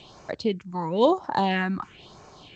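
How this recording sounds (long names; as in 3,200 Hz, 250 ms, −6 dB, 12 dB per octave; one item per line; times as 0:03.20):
phaser sweep stages 4, 1 Hz, lowest notch 480–3,200 Hz
G.722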